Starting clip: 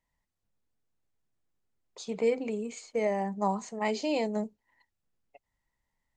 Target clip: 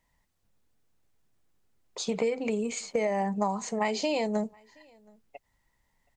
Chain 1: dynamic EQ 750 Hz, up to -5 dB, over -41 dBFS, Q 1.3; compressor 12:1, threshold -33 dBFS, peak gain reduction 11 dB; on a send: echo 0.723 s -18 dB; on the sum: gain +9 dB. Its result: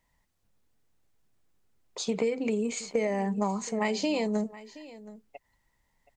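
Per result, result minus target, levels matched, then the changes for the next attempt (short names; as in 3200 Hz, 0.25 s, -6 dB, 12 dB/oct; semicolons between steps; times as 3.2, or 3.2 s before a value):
echo-to-direct +11 dB; 1000 Hz band -3.5 dB
change: echo 0.723 s -29 dB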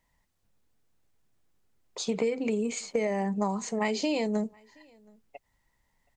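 1000 Hz band -3.0 dB
change: dynamic EQ 310 Hz, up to -5 dB, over -41 dBFS, Q 1.3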